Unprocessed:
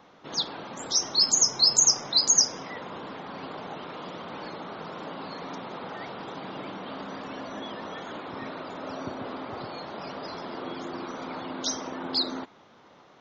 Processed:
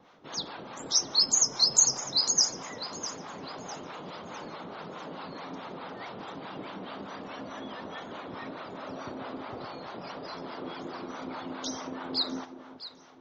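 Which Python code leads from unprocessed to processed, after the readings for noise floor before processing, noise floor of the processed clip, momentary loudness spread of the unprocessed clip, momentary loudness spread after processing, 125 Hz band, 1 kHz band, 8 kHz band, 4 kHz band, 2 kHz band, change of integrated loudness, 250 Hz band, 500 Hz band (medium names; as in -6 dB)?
-55 dBFS, -48 dBFS, 19 LU, 19 LU, -2.5 dB, -3.0 dB, no reading, -3.0 dB, -3.0 dB, -3.0 dB, -2.5 dB, -3.0 dB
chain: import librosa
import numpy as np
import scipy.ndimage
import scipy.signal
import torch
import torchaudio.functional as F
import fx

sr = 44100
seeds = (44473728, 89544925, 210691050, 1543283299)

y = fx.echo_alternate(x, sr, ms=327, hz=1400.0, feedback_pct=56, wet_db=-10)
y = fx.harmonic_tremolo(y, sr, hz=4.7, depth_pct=70, crossover_hz=600.0)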